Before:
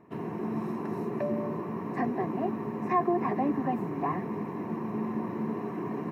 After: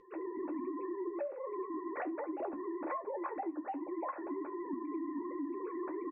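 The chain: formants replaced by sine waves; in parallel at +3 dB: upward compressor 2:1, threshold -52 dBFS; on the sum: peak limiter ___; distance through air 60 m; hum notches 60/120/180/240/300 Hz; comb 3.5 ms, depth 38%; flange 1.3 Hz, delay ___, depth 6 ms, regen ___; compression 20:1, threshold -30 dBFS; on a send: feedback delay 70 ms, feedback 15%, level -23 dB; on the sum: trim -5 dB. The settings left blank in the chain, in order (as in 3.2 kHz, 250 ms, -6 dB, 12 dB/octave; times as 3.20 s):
-10 dBFS, 9.4 ms, +49%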